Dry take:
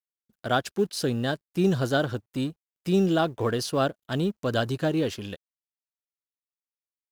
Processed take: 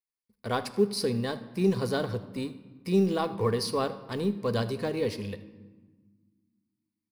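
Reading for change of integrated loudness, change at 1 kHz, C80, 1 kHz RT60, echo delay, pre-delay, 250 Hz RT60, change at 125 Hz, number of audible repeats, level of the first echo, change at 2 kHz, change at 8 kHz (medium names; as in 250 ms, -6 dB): -3.0 dB, -4.0 dB, 15.5 dB, 1.3 s, 79 ms, 3 ms, 2.4 s, -3.5 dB, 1, -18.5 dB, -7.0 dB, -3.0 dB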